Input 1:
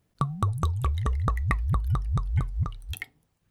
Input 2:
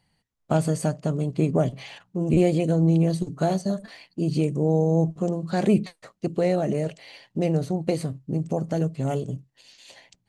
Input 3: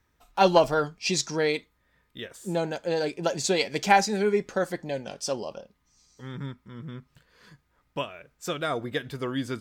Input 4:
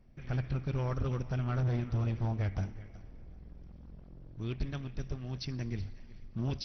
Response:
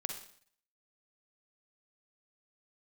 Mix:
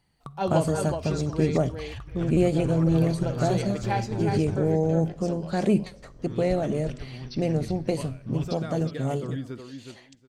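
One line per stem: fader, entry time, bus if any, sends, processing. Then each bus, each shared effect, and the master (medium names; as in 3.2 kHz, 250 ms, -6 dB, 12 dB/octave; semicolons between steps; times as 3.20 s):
-12.0 dB, 0.05 s, send -15.5 dB, echo send -10 dB, compression 3:1, threshold -27 dBFS, peak gain reduction 6.5 dB
-3.5 dB, 0.00 s, send -13.5 dB, no echo send, none
-11.5 dB, 0.00 s, send -10.5 dB, echo send -3.5 dB, tilt shelf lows +5 dB, about 840 Hz
-3.0 dB, 1.90 s, send -9 dB, echo send -5 dB, none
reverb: on, RT60 0.55 s, pre-delay 41 ms
echo: feedback delay 366 ms, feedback 16%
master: none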